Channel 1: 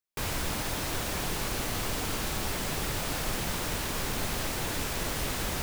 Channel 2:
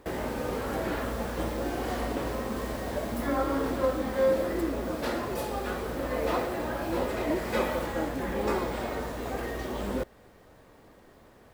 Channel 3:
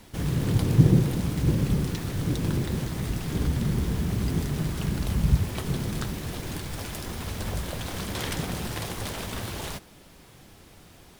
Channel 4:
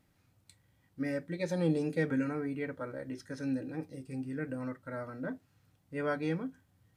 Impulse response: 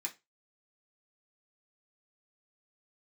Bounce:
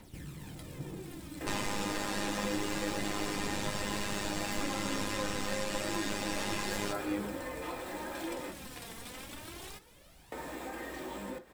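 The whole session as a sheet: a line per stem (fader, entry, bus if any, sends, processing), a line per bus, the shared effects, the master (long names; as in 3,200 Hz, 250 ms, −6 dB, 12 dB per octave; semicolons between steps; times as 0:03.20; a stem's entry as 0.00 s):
+3.0 dB, 1.30 s, bus A, send −11 dB, lower of the sound and its delayed copy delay 4.9 ms; low-pass filter 7,600 Hz 12 dB per octave; comb filter 6 ms
+1.5 dB, 1.35 s, muted 0:08.51–0:10.32, bus B, send −6 dB, downward compressor, threshold −32 dBFS, peak gain reduction 11.5 dB
−9.0 dB, 0.00 s, bus B, send −11 dB, phase shifter 0.28 Hz, delay 4.5 ms, feedback 56%
+2.5 dB, 0.85 s, bus A, no send, no processing
bus A: 0.0 dB, phases set to zero 102 Hz; downward compressor, threshold −30 dBFS, peak gain reduction 8.5 dB
bus B: 0.0 dB, gain into a clipping stage and back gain 29 dB; downward compressor, threshold −43 dBFS, peak gain reduction 11.5 dB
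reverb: on, RT60 0.25 s, pre-delay 3 ms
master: no processing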